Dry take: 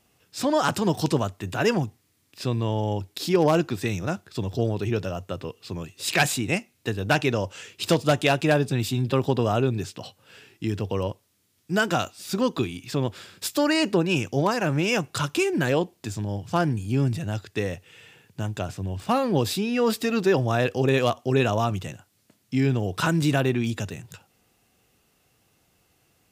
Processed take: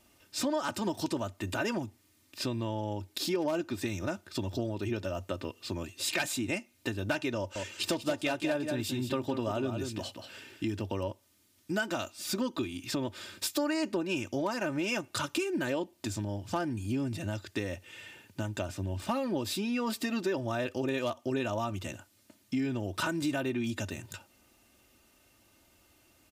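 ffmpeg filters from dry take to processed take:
-filter_complex "[0:a]asettb=1/sr,asplit=3[a][b][c];[a]atrim=end=7.374[d];[b]atrim=start=7.37:end=10.77,asetpts=PTS-STARTPTS,afade=t=in:d=0.004:c=qsin,afade=t=out:st=3.396:d=0.004:c=qsin,aecho=1:1:184:0.355,atrim=end_sample=149940[e];[c]atrim=start=10.766[f];[d][e]acrossfade=d=0.004:c1=hsin:c2=qsin[g];[g][f]acrossfade=d=0.004:c1=qsin:c2=hsin,aecho=1:1:3.3:0.65,acompressor=threshold=-32dB:ratio=3"

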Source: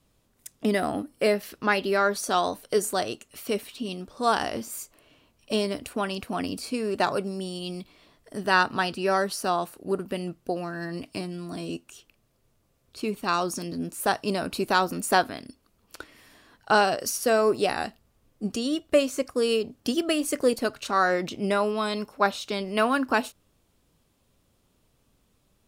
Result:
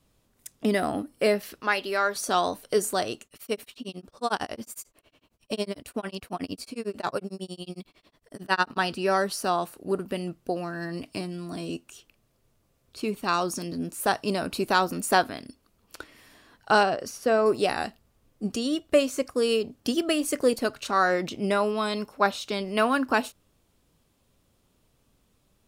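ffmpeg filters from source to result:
-filter_complex "[0:a]asettb=1/sr,asplit=3[a][b][c];[a]atrim=end=1.604[d];[b]atrim=start=1.6:end=2.16,asetpts=PTS-STARTPTS,afade=t=in:d=0.004:c=qsin,afade=t=out:st=0.556:d=0.004:c=qsin,equalizer=f=110:w=0.34:g=-12.5[e];[c]atrim=start=2.156[f];[d][e]acrossfade=d=0.004:c1=hsin:c2=qsin[g];[g][f]acrossfade=d=0.004:c1=qsin:c2=hsin,asettb=1/sr,asplit=3[h][i][j];[h]atrim=end=3.254[k];[i]atrim=start=3.25:end=8.77,asetpts=PTS-STARTPTS,afade=t=in:d=0.004:c=qsin,afade=t=out:st=5.516:d=0.004:c=qsin,tremolo=f=11:d=1[l];[j]atrim=start=8.766[m];[k][l]acrossfade=d=0.004:c1=hsin:c2=qsin[n];[n][m]acrossfade=d=0.004:c1=qsin:c2=hsin,asettb=1/sr,asplit=3[o][p][q];[o]atrim=end=16.834[r];[p]atrim=start=16.83:end=17.46,asetpts=PTS-STARTPTS,afade=t=in:d=0.004:c=qsin,afade=t=out:st=0.626:d=0.004:c=qsin,lowpass=f=2.1k:p=1[s];[q]atrim=start=17.456[t];[r][s]acrossfade=d=0.004:c1=hsin:c2=qsin[u];[u][t]acrossfade=d=0.004:c1=qsin:c2=hsin"

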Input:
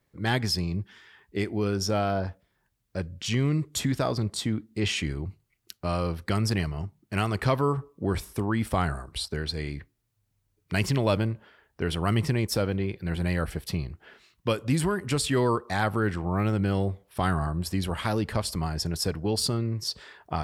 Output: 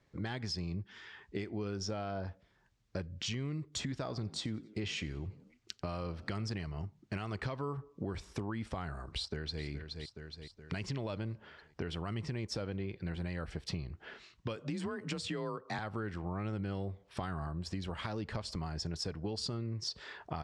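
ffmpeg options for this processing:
-filter_complex "[0:a]asettb=1/sr,asplit=3[a][b][c];[a]atrim=end=3.944[d];[b]atrim=start=3.94:end=6.48,asetpts=PTS-STARTPTS,afade=t=in:d=0.004:c=qsin,afade=t=out:st=2.536:d=0.004:c=qsin,asplit=4[e][f][g][h];[f]adelay=90,afreqshift=50,volume=-22dB[i];[g]adelay=180,afreqshift=100,volume=-30dB[j];[h]adelay=270,afreqshift=150,volume=-37.9dB[k];[e][i][j][k]amix=inputs=4:normalize=0,atrim=end_sample=112014[l];[c]atrim=start=6.476[m];[d][l]acrossfade=d=0.004:c1=hsin:c2=qsin[n];[n][m]acrossfade=d=0.004:c1=qsin:c2=hsin,asplit=2[o][p];[p]afade=t=in:st=9.05:d=0.01,afade=t=out:st=9.63:d=0.01,aecho=0:1:420|840|1260|1680|2100:0.223872|0.111936|0.055968|0.027984|0.013992[q];[o][q]amix=inputs=2:normalize=0,asettb=1/sr,asplit=3[r][s][t];[r]atrim=end=14.564[u];[s]atrim=start=14.56:end=15.79,asetpts=PTS-STARTPTS,afade=t=in:d=0.004:c=qsin,afade=t=out:st=1.226:d=0.004:c=qsin,afreqshift=34[v];[t]atrim=start=15.786[w];[u][v]acrossfade=d=0.004:c1=hsin:c2=qsin[x];[x][w]acrossfade=d=0.004:c1=qsin:c2=hsin,lowpass=f=6.9k:w=0.5412,lowpass=f=6.9k:w=1.3066,alimiter=limit=-19.5dB:level=0:latency=1:release=378,acompressor=threshold=-39dB:ratio=4,volume=2dB"

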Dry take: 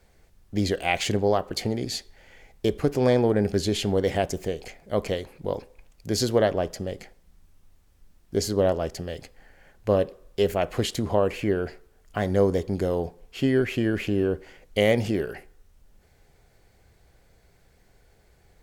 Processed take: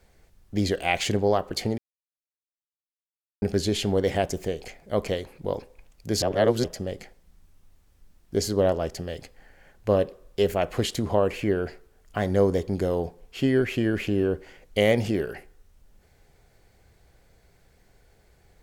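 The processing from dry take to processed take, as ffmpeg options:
-filter_complex "[0:a]asplit=5[a][b][c][d][e];[a]atrim=end=1.78,asetpts=PTS-STARTPTS,afade=t=out:st=1.776:d=0.004:c=hsin[f];[b]atrim=start=1.78:end=3.42,asetpts=PTS-STARTPTS,volume=0[g];[c]atrim=start=3.42:end=6.222,asetpts=PTS-STARTPTS,afade=t=in:d=0.004:c=hsin[h];[d]atrim=start=6.218:end=6.642,asetpts=PTS-STARTPTS,areverse[i];[e]atrim=start=6.638[j];[f][g][h]concat=n=3:v=0:a=1[k];[k][i]acrossfade=d=0.004:c1=hsin:c2=hsin[l];[l][j]acrossfade=d=0.004:c1=hsin:c2=hsin"

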